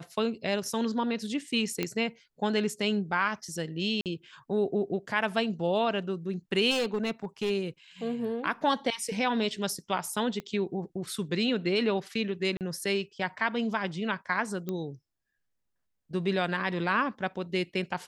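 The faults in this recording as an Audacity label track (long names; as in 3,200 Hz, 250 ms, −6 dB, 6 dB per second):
1.830000	1.830000	click −14 dBFS
4.010000	4.060000	drop-out 48 ms
6.700000	7.510000	clipping −24.5 dBFS
10.400000	10.400000	click −24 dBFS
12.570000	12.610000	drop-out 38 ms
14.690000	14.690000	click −20 dBFS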